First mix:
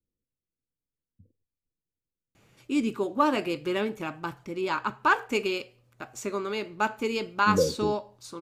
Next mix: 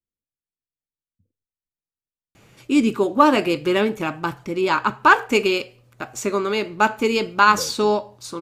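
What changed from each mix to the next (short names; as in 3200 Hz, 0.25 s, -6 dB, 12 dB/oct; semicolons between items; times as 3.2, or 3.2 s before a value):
first voice +9.0 dB; second voice -9.5 dB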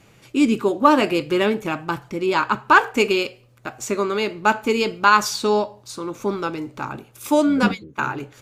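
first voice: entry -2.35 s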